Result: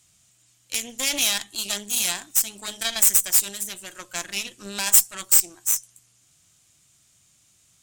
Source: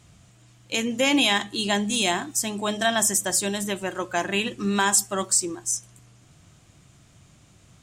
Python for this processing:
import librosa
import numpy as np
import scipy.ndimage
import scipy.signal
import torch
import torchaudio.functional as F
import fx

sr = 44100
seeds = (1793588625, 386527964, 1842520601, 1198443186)

y = fx.cheby_harmonics(x, sr, harmonics=(4,), levels_db=(-7,), full_scale_db=-8.0)
y = librosa.effects.preemphasis(y, coef=0.9, zi=[0.0])
y = y * 10.0 ** (3.0 / 20.0)